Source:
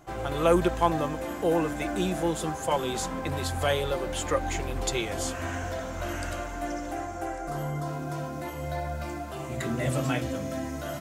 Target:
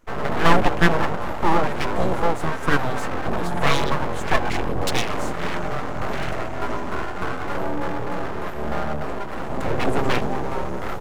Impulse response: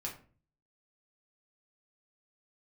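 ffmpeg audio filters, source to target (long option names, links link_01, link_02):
-af "acontrast=71,afwtdn=0.0355,aeval=exprs='abs(val(0))':channel_layout=same,volume=3.5dB"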